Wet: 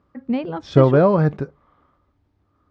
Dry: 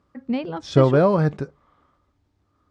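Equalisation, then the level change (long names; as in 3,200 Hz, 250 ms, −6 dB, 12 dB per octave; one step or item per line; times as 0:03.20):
high-frequency loss of the air 59 metres
high-shelf EQ 3,900 Hz −7.5 dB
+2.5 dB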